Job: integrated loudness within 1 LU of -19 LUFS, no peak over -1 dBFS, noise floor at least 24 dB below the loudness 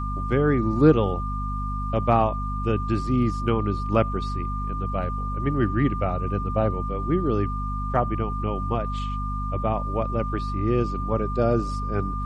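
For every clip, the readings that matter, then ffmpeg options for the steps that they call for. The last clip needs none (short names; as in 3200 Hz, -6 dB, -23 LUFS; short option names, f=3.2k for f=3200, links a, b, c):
hum 50 Hz; harmonics up to 250 Hz; hum level -26 dBFS; steady tone 1200 Hz; tone level -31 dBFS; loudness -25.0 LUFS; peak -4.5 dBFS; loudness target -19.0 LUFS
-> -af "bandreject=f=50:t=h:w=6,bandreject=f=100:t=h:w=6,bandreject=f=150:t=h:w=6,bandreject=f=200:t=h:w=6,bandreject=f=250:t=h:w=6"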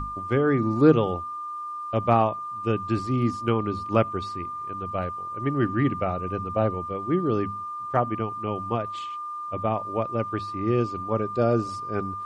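hum none; steady tone 1200 Hz; tone level -31 dBFS
-> -af "bandreject=f=1.2k:w=30"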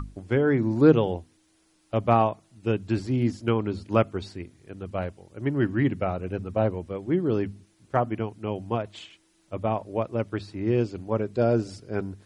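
steady tone none; loudness -26.5 LUFS; peak -5.0 dBFS; loudness target -19.0 LUFS
-> -af "volume=7.5dB,alimiter=limit=-1dB:level=0:latency=1"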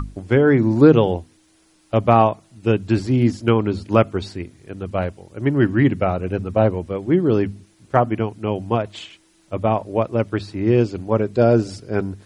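loudness -19.5 LUFS; peak -1.0 dBFS; noise floor -57 dBFS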